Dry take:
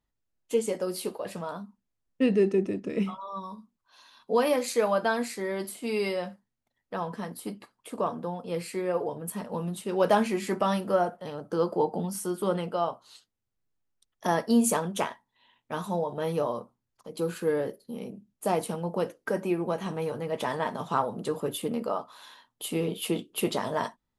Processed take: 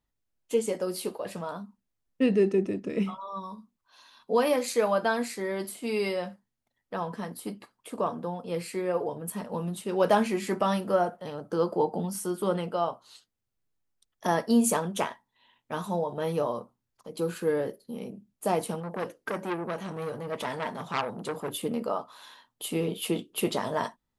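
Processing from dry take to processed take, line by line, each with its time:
0:18.80–0:21.53: saturating transformer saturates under 1,900 Hz

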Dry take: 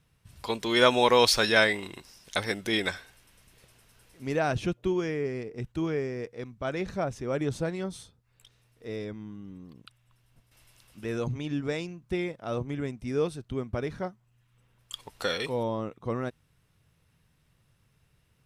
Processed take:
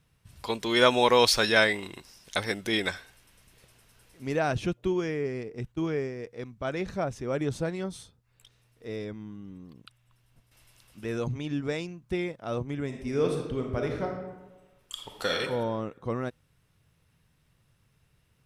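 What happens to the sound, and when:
0:05.75–0:06.27: downward expander −32 dBFS
0:12.85–0:15.36: thrown reverb, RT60 1.2 s, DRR 1.5 dB

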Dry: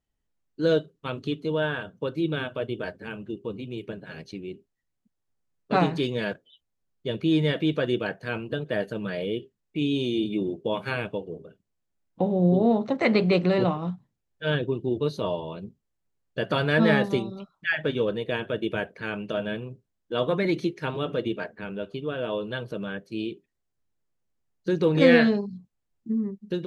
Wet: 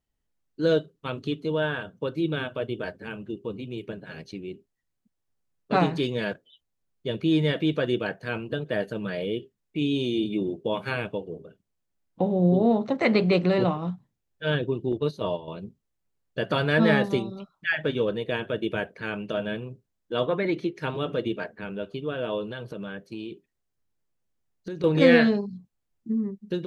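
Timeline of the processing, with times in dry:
0:14.92–0:15.48: noise gate −30 dBFS, range −7 dB
0:20.26–0:20.75: bass and treble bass −5 dB, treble −11 dB
0:22.50–0:24.84: downward compressor, threshold −31 dBFS

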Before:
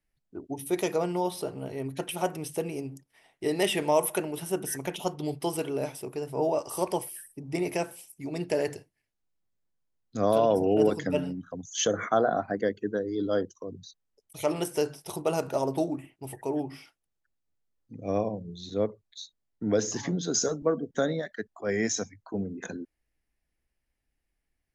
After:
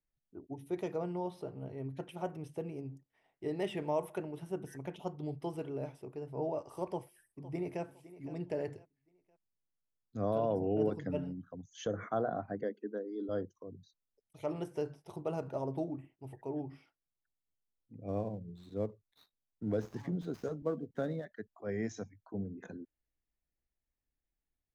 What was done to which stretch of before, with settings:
0:06.86–0:07.83: delay throw 510 ms, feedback 35%, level −15.5 dB
0:12.63–0:13.29: elliptic high-pass filter 220 Hz
0:18.08–0:21.25: gap after every zero crossing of 0.074 ms
whole clip: low-pass filter 1,300 Hz 6 dB per octave; dynamic equaliser 110 Hz, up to +7 dB, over −47 dBFS, Q 1.1; level −9 dB

